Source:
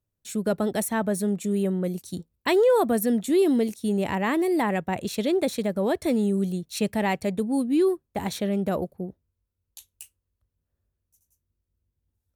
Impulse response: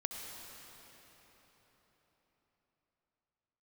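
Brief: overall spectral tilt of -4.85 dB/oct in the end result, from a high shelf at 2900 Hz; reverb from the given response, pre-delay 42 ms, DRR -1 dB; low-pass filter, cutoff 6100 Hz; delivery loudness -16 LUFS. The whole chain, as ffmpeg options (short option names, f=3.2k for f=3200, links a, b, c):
-filter_complex "[0:a]lowpass=6.1k,highshelf=f=2.9k:g=-6,asplit=2[a][b];[1:a]atrim=start_sample=2205,adelay=42[c];[b][c]afir=irnorm=-1:irlink=0,volume=0dB[d];[a][d]amix=inputs=2:normalize=0,volume=6dB"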